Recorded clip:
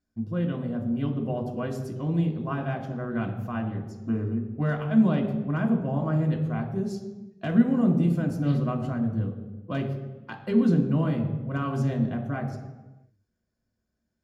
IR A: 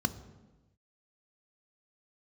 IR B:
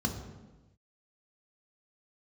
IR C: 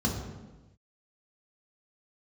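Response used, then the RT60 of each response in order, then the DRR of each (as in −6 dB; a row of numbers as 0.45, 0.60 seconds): B; non-exponential decay, non-exponential decay, non-exponential decay; 11.0, 2.0, −2.0 decibels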